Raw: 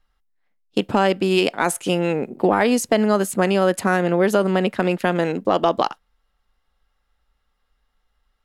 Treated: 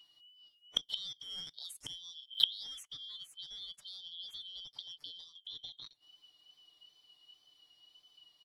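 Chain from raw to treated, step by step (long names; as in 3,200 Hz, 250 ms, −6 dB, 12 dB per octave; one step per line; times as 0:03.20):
band-splitting scrambler in four parts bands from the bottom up 3412
tape wow and flutter 39 cents
comb filter 6.8 ms, depth 79%
gate with flip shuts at −17 dBFS, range −33 dB
0:00.83–0:02.83: high-shelf EQ 7,400 Hz +10 dB
level +1.5 dB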